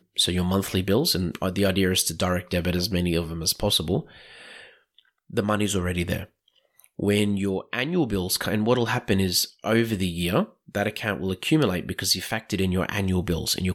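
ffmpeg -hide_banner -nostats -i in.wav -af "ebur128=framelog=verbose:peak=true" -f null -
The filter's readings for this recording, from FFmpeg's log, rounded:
Integrated loudness:
  I:         -24.4 LUFS
  Threshold: -34.9 LUFS
Loudness range:
  LRA:         3.7 LU
  Threshold: -45.2 LUFS
  LRA low:   -27.4 LUFS
  LRA high:  -23.7 LUFS
True peak:
  Peak:       -8.8 dBFS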